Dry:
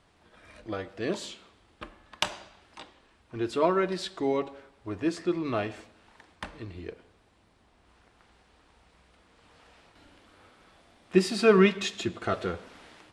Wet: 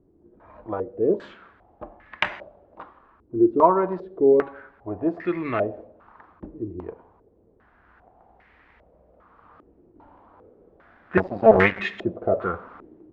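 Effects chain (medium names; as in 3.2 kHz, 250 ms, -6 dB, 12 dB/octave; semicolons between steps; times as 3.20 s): 11.17–11.80 s: cycle switcher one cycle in 2, muted; step-sequenced low-pass 2.5 Hz 350–2000 Hz; trim +2 dB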